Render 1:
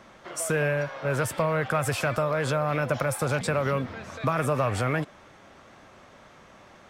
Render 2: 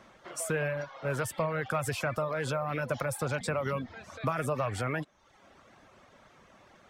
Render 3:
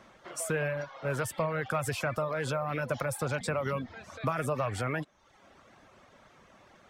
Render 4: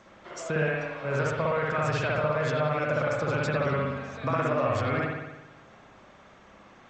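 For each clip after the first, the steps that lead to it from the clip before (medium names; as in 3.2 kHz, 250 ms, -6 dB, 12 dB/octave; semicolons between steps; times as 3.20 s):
reverb removal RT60 0.72 s; trim -4.5 dB
no audible change
spring tank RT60 1.1 s, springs 59 ms, chirp 35 ms, DRR -3.5 dB; G.722 64 kbps 16 kHz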